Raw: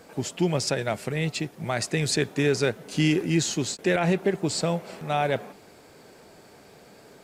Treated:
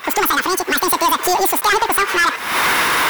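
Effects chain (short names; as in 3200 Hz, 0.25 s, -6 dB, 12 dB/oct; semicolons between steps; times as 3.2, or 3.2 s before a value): recorder AGC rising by 33 dB/s; ten-band EQ 250 Hz -4 dB, 500 Hz +4 dB, 1000 Hz +10 dB, 8000 Hz +6 dB; soft clip -21.5 dBFS, distortion -9 dB; in parallel at -12 dB: bit-crush 6-bit; on the sum: speed mistake 33 rpm record played at 78 rpm; gain +9 dB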